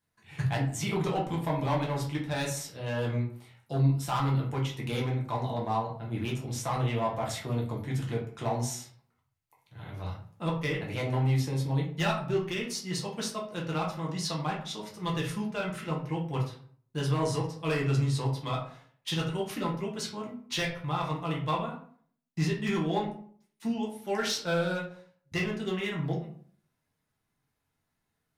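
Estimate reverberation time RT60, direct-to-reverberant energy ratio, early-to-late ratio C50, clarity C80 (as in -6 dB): 0.55 s, -3.0 dB, 7.0 dB, 11.5 dB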